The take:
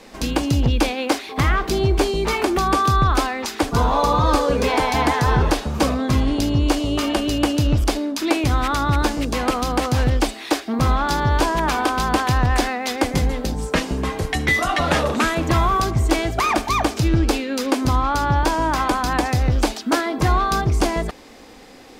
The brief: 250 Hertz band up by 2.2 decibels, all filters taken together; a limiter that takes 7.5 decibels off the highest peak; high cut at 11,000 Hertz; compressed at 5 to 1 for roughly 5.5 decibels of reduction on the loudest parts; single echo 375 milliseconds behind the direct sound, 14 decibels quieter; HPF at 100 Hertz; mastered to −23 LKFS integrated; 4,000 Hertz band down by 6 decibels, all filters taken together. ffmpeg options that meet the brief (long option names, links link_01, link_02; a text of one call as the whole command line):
ffmpeg -i in.wav -af "highpass=100,lowpass=11000,equalizer=frequency=250:width_type=o:gain=3,equalizer=frequency=4000:width_type=o:gain=-8,acompressor=threshold=-19dB:ratio=5,alimiter=limit=-15.5dB:level=0:latency=1,aecho=1:1:375:0.2,volume=2dB" out.wav